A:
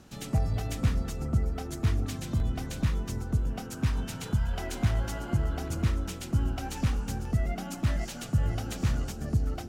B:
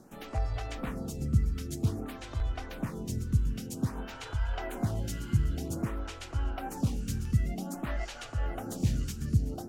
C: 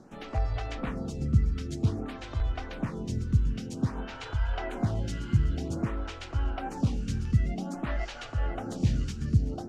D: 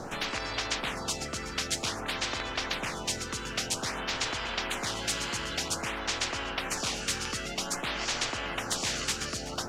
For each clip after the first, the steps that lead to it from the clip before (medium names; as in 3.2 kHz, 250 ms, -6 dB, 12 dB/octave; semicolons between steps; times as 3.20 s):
lamp-driven phase shifter 0.52 Hz; trim +1.5 dB
low-pass 5.2 kHz 12 dB/octave; trim +2.5 dB
spectrum-flattening compressor 10:1; trim -4.5 dB